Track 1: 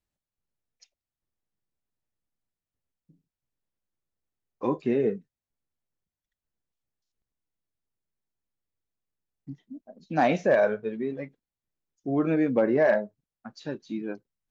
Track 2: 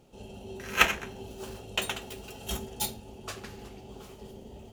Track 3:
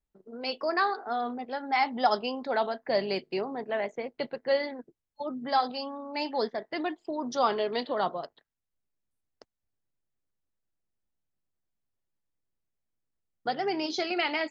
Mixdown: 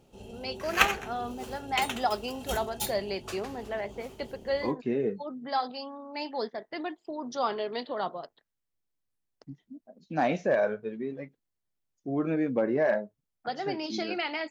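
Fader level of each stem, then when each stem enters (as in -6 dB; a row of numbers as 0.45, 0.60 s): -4.0, -1.5, -3.5 dB; 0.00, 0.00, 0.00 s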